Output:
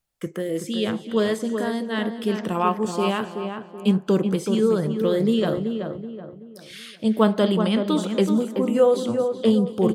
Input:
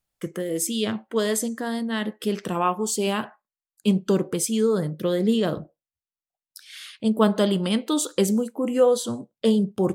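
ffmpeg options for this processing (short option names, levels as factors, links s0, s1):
-filter_complex "[0:a]asplit=2[s0][s1];[s1]aecho=0:1:224:0.0944[s2];[s0][s2]amix=inputs=2:normalize=0,acrossover=split=3900[s3][s4];[s4]acompressor=threshold=0.00708:ratio=4:attack=1:release=60[s5];[s3][s5]amix=inputs=2:normalize=0,asplit=2[s6][s7];[s7]adelay=378,lowpass=f=1800:p=1,volume=0.501,asplit=2[s8][s9];[s9]adelay=378,lowpass=f=1800:p=1,volume=0.4,asplit=2[s10][s11];[s11]adelay=378,lowpass=f=1800:p=1,volume=0.4,asplit=2[s12][s13];[s13]adelay=378,lowpass=f=1800:p=1,volume=0.4,asplit=2[s14][s15];[s15]adelay=378,lowpass=f=1800:p=1,volume=0.4[s16];[s8][s10][s12][s14][s16]amix=inputs=5:normalize=0[s17];[s6][s17]amix=inputs=2:normalize=0,volume=1.12"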